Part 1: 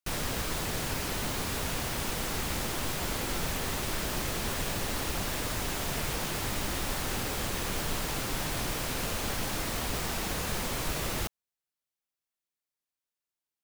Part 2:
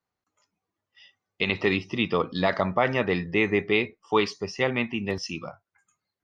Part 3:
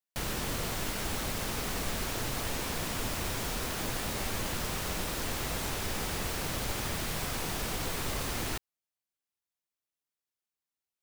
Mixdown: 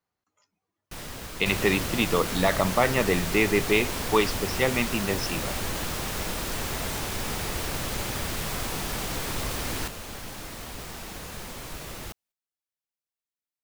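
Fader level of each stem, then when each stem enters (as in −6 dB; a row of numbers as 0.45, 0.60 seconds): −6.0, +0.5, +2.5 decibels; 0.85, 0.00, 1.30 seconds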